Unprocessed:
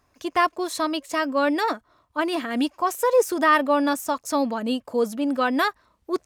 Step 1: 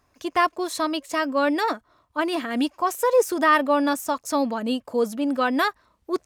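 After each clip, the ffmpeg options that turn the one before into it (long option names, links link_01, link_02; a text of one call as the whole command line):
ffmpeg -i in.wav -af anull out.wav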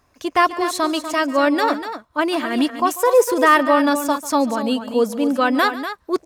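ffmpeg -i in.wav -af "aecho=1:1:143|244:0.141|0.316,volume=4.5dB" out.wav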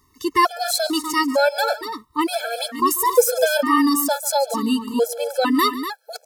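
ffmpeg -i in.wav -af "aexciter=amount=2.5:drive=3.5:freq=3900,afftfilt=real='re*gt(sin(2*PI*1.1*pts/sr)*(1-2*mod(floor(b*sr/1024/440),2)),0)':imag='im*gt(sin(2*PI*1.1*pts/sr)*(1-2*mod(floor(b*sr/1024/440),2)),0)':win_size=1024:overlap=0.75,volume=1.5dB" out.wav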